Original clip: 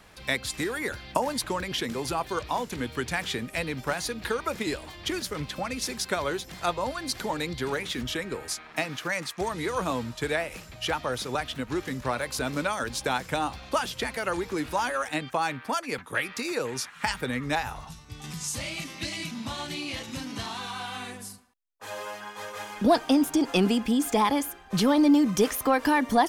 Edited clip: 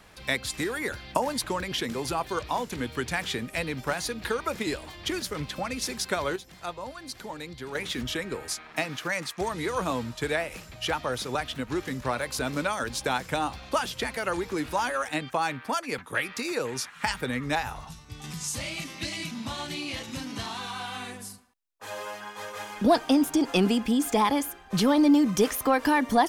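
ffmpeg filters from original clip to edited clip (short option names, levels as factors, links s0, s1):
-filter_complex "[0:a]asplit=3[s0][s1][s2];[s0]atrim=end=6.362[s3];[s1]atrim=start=6.358:end=7.752,asetpts=PTS-STARTPTS,volume=0.398[s4];[s2]atrim=start=7.748[s5];[s3][s4]acrossfade=d=0.004:c1=hsin:c2=hsin[s6];[s6][s5]acrossfade=d=0.004:c1=hsin:c2=hsin"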